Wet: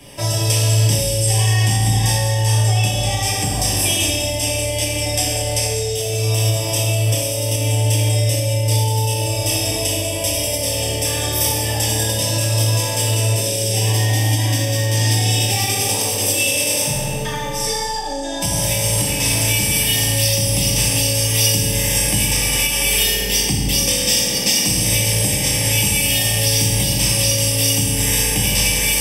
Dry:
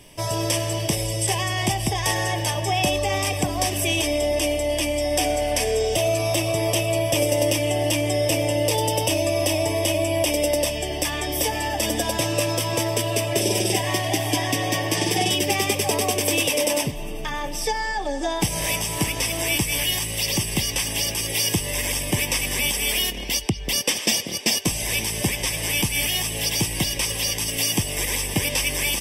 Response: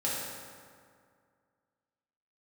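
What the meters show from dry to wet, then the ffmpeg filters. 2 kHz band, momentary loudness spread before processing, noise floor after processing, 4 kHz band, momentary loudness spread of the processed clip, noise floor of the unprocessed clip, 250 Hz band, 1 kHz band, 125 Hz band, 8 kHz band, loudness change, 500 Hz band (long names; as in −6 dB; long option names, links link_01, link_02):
+2.5 dB, 3 LU, −22 dBFS, +5.5 dB, 4 LU, −30 dBFS, +1.0 dB, 0.0 dB, +10.5 dB, +7.5 dB, +5.5 dB, −0.5 dB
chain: -filter_complex "[1:a]atrim=start_sample=2205[link_01];[0:a][link_01]afir=irnorm=-1:irlink=0,alimiter=limit=-6.5dB:level=0:latency=1:release=290,acrossover=split=130|3000[link_02][link_03][link_04];[link_03]acompressor=threshold=-27dB:ratio=10[link_05];[link_02][link_05][link_04]amix=inputs=3:normalize=0,volume=3.5dB"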